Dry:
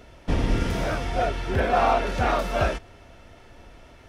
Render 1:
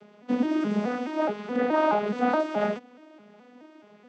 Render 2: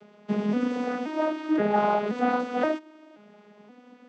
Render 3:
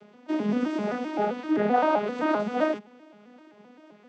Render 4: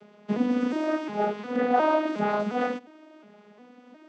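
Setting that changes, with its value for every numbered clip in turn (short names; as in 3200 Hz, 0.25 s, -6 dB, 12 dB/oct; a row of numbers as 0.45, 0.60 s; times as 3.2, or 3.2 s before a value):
arpeggiated vocoder, a note every: 0.212, 0.526, 0.13, 0.358 s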